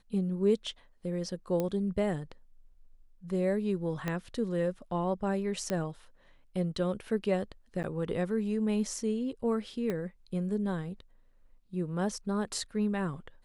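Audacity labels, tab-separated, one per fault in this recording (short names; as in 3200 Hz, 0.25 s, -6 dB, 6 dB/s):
1.600000	1.600000	pop -18 dBFS
4.080000	4.080000	pop -18 dBFS
5.700000	5.700000	pop -18 dBFS
7.830000	7.840000	gap 9.1 ms
9.900000	9.900000	pop -21 dBFS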